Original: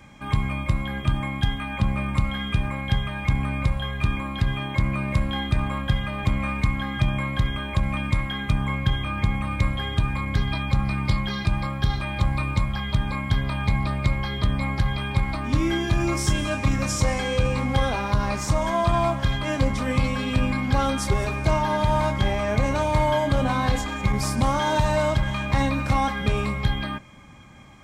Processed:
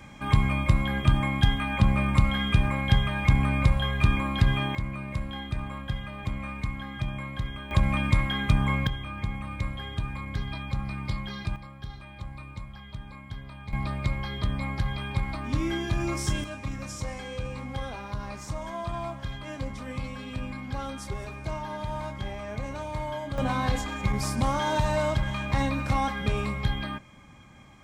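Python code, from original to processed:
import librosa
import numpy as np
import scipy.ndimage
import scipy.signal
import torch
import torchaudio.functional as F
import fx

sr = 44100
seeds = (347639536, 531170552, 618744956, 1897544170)

y = fx.gain(x, sr, db=fx.steps((0.0, 1.5), (4.75, -9.0), (7.71, 0.5), (8.87, -8.5), (11.56, -16.5), (13.73, -5.5), (16.44, -12.0), (23.38, -4.0)))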